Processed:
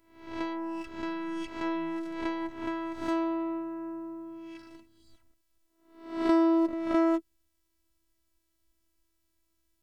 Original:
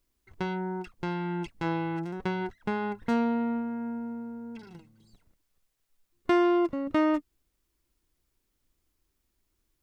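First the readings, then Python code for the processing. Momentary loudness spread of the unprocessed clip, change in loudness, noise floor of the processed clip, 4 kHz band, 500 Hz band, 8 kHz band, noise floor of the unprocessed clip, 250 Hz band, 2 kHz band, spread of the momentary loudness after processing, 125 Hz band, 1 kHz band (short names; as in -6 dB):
13 LU, -1.0 dB, -76 dBFS, -2.5 dB, -2.0 dB, n/a, -78 dBFS, -0.5 dB, -4.0 dB, 16 LU, under -15 dB, -2.5 dB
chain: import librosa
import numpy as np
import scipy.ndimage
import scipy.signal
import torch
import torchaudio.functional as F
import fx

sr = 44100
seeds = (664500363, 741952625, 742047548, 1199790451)

y = fx.spec_swells(x, sr, rise_s=0.63)
y = fx.robotise(y, sr, hz=330.0)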